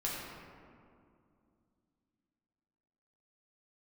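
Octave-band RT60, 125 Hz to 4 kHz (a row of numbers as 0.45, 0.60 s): 3.1, 3.5, 2.6, 2.3, 1.7, 1.1 s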